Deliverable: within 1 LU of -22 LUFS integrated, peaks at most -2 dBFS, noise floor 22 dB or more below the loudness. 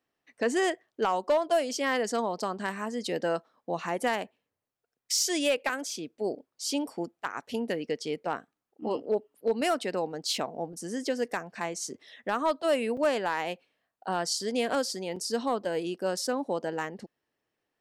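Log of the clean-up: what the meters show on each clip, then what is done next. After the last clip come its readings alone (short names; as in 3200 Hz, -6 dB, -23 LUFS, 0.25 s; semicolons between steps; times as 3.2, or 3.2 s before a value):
clipped 0.2%; flat tops at -18.5 dBFS; dropouts 3; longest dropout 4.3 ms; loudness -30.5 LUFS; peak -18.5 dBFS; loudness target -22.0 LUFS
-> clip repair -18.5 dBFS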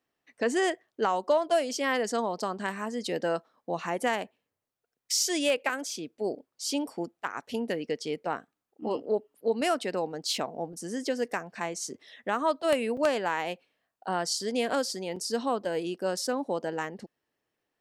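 clipped 0.0%; dropouts 3; longest dropout 4.3 ms
-> interpolate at 5.69/12.97/15.16, 4.3 ms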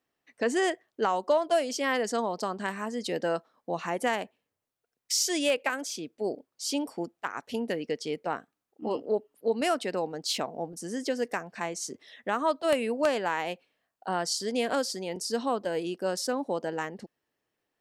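dropouts 0; loudness -30.5 LUFS; peak -9.5 dBFS; loudness target -22.0 LUFS
-> gain +8.5 dB; limiter -2 dBFS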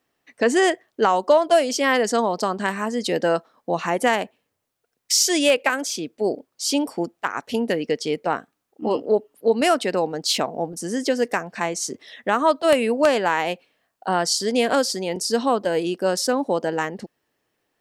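loudness -22.0 LUFS; peak -2.0 dBFS; noise floor -77 dBFS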